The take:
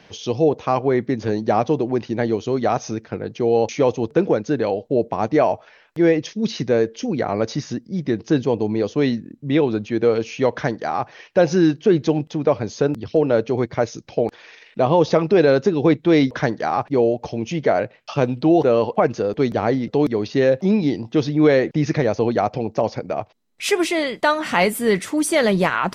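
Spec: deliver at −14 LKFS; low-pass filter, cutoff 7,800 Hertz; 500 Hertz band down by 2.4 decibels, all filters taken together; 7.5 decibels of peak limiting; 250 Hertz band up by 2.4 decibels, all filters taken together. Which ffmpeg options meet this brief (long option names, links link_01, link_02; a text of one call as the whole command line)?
ffmpeg -i in.wav -af "lowpass=7800,equalizer=frequency=250:width_type=o:gain=5,equalizer=frequency=500:width_type=o:gain=-4.5,volume=9dB,alimiter=limit=-2.5dB:level=0:latency=1" out.wav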